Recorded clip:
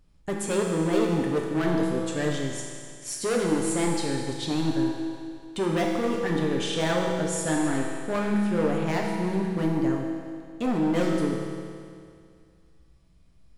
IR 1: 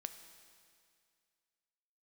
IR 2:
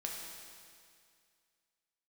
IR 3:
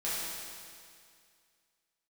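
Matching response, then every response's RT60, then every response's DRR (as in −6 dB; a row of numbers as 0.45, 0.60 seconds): 2; 2.2, 2.2, 2.2 seconds; 8.5, −1.5, −10.5 decibels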